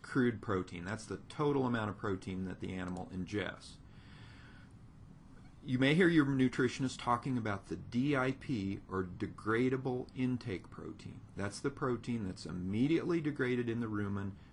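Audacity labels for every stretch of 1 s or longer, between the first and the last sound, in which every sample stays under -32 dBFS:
3.490000	5.690000	silence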